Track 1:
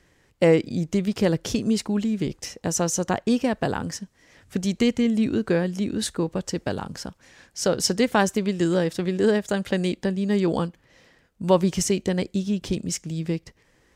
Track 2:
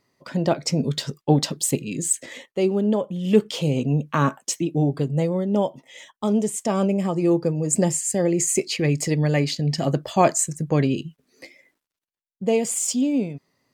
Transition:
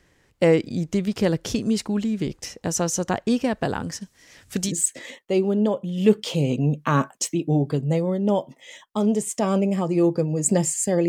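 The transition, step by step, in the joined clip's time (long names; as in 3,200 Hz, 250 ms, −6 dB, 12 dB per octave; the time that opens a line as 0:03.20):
track 1
0:04.01–0:04.73: high-shelf EQ 2,700 Hz +10.5 dB
0:04.69: continue with track 2 from 0:01.96, crossfade 0.08 s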